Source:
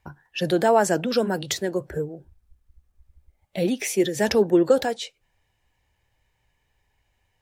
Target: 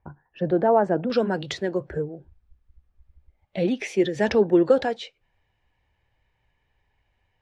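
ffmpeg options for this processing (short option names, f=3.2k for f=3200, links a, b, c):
-af "asetnsamples=n=441:p=0,asendcmd='1.1 lowpass f 3400',lowpass=1.1k"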